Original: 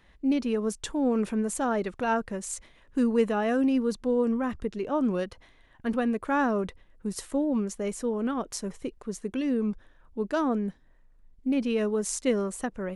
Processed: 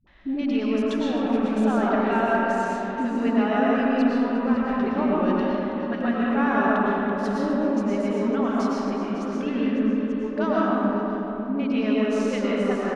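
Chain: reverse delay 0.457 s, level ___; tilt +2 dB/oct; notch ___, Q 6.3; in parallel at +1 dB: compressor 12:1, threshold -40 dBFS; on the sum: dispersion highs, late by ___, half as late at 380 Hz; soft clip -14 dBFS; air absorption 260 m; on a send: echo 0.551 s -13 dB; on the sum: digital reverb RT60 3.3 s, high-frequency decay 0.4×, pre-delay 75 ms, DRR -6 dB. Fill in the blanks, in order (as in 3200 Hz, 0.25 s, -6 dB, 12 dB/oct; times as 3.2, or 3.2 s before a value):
-14 dB, 480 Hz, 72 ms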